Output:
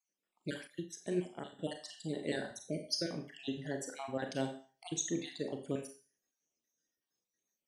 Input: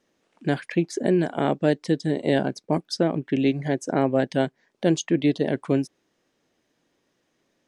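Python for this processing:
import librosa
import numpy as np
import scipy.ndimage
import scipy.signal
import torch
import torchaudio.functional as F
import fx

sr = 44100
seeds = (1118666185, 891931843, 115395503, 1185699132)

y = fx.spec_dropout(x, sr, seeds[0], share_pct=49)
y = scipy.signal.lfilter([1.0, -0.8], [1.0], y)
y = fx.rev_schroeder(y, sr, rt60_s=0.45, comb_ms=30, drr_db=4.0)
y = fx.noise_reduce_blind(y, sr, reduce_db=10)
y = fx.upward_expand(y, sr, threshold_db=-46.0, expansion=1.5, at=(0.67, 1.59))
y = F.gain(torch.from_numpy(y), -1.0).numpy()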